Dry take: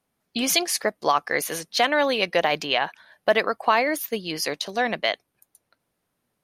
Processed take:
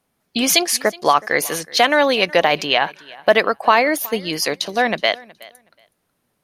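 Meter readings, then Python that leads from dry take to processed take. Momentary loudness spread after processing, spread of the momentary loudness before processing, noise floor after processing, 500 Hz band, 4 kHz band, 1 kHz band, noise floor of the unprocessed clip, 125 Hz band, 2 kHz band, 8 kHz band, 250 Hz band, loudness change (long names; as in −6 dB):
7 LU, 7 LU, −71 dBFS, +6.0 dB, +6.0 dB, +6.0 dB, −77 dBFS, +6.0 dB, +6.0 dB, +6.0 dB, +6.0 dB, +6.0 dB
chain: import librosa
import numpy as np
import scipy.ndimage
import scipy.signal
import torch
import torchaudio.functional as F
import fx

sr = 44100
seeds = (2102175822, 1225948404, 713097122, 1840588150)

y = fx.echo_feedback(x, sr, ms=370, feedback_pct=18, wet_db=-22.5)
y = y * librosa.db_to_amplitude(6.0)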